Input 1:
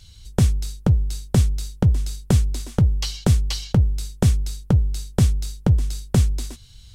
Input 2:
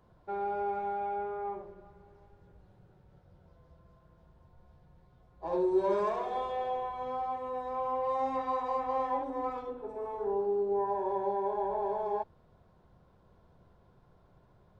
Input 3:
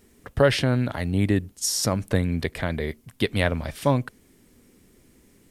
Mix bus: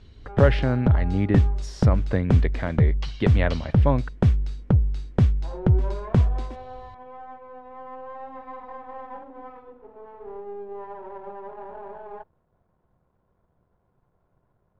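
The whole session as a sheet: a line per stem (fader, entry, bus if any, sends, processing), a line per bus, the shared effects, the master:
-1.5 dB, 0.00 s, no send, dry
-4.0 dB, 0.00 s, no send, half-wave gain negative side -7 dB
-1.0 dB, 0.00 s, no send, dry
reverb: off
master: LPF 2200 Hz 12 dB/oct

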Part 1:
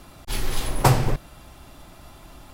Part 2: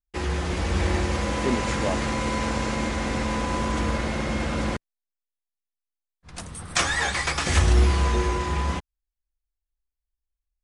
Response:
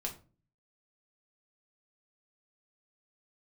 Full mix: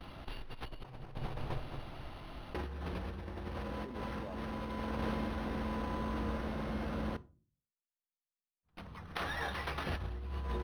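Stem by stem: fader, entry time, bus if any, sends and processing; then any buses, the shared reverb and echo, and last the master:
-7.5 dB, 0.00 s, no send, echo send -9 dB, gate with hold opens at -39 dBFS; high shelf 7300 Hz +7.5 dB
4.69 s -9 dB -> 5.28 s -17.5 dB, 2.40 s, send -10.5 dB, no echo send, gate with hold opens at -29 dBFS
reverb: on, RT60 0.35 s, pre-delay 5 ms
echo: feedback echo 0.218 s, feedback 43%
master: bell 2200 Hz -8 dB 0.41 oct; negative-ratio compressor -39 dBFS, ratio -1; decimation joined by straight lines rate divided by 6×

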